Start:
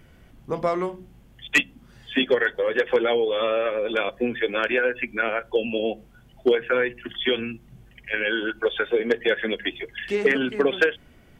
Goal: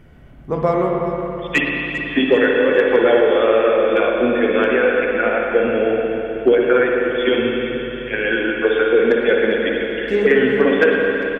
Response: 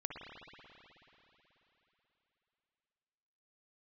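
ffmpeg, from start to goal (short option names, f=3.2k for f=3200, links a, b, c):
-filter_complex "[0:a]asettb=1/sr,asplit=3[a][b][c];[a]atrim=end=4.714[d];[b]atrim=start=4.71:end=6.53,asetpts=PTS-STARTPTS,afade=t=in:d=0.004:c=qsin,afade=t=out:st=1.816:d=0.004:c=qsin,acrossover=split=2900[e][f];[f]acompressor=threshold=-51dB:ratio=4:attack=1:release=60[g];[e][g]amix=inputs=2:normalize=0[h];[c]atrim=start=6.526[i];[d][h]acrossfade=d=0.004:c1=hsin:c2=qsin[j];[j][i]acrossfade=d=0.004:c1=qsin:c2=hsin,highshelf=f=2.5k:g=-11,aecho=1:1:397|794|1191|1588:0.188|0.081|0.0348|0.015[k];[1:a]atrim=start_sample=2205[l];[k][l]afir=irnorm=-1:irlink=0,volume=9dB"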